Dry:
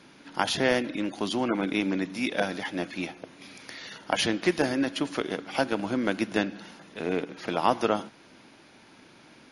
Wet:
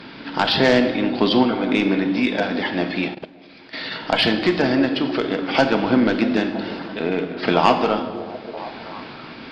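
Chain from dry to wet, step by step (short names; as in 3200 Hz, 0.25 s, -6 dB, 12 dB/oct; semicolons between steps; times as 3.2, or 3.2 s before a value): downsampling 11025 Hz; in parallel at 0 dB: compressor 8:1, threshold -40 dBFS, peak gain reduction 23 dB; on the sum: sine folder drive 6 dB, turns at -5.5 dBFS; random-step tremolo; delay with a stepping band-pass 0.322 s, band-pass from 280 Hz, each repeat 0.7 oct, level -10 dB; on a send at -6 dB: reverb RT60 1.5 s, pre-delay 4 ms; 3.08–3.87 on the sum: level quantiser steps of 15 dB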